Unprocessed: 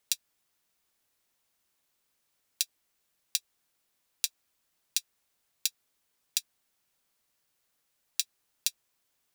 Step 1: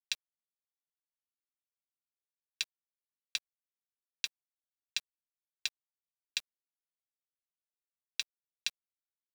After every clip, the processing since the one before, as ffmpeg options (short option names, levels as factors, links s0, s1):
-af "lowpass=2600,acontrast=28,acrusher=bits=7:mix=0:aa=0.000001,volume=1.19"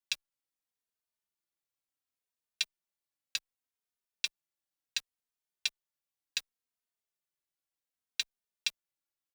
-filter_complex "[0:a]asplit=2[s0][s1];[s1]adelay=3,afreqshift=-0.68[s2];[s0][s2]amix=inputs=2:normalize=1,volume=1.78"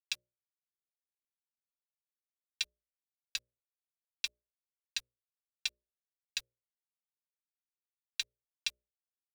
-af "acrusher=bits=8:mix=0:aa=0.5,asubboost=boost=5:cutoff=83,bandreject=f=60:t=h:w=6,bandreject=f=120:t=h:w=6,bandreject=f=180:t=h:w=6,bandreject=f=240:t=h:w=6,bandreject=f=300:t=h:w=6,bandreject=f=360:t=h:w=6,bandreject=f=420:t=h:w=6,bandreject=f=480:t=h:w=6,bandreject=f=540:t=h:w=6,bandreject=f=600:t=h:w=6,volume=0.75"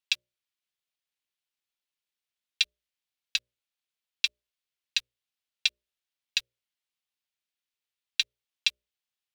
-af "equalizer=f=3100:w=0.76:g=11.5"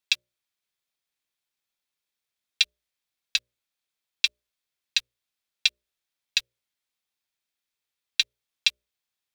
-af "bandreject=f=2900:w=14,volume=1.58"